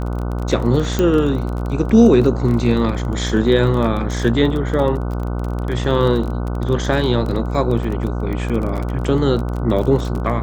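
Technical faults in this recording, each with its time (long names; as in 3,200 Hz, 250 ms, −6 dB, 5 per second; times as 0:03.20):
mains buzz 60 Hz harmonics 25 −22 dBFS
surface crackle 26 per second −23 dBFS
0:00.99: click −6 dBFS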